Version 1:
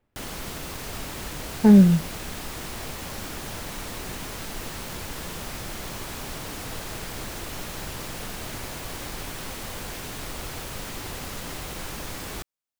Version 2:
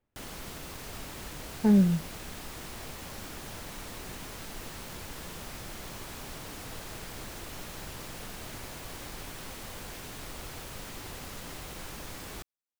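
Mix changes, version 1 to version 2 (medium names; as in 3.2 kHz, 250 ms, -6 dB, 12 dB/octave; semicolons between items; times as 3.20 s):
speech -8.0 dB; background -7.0 dB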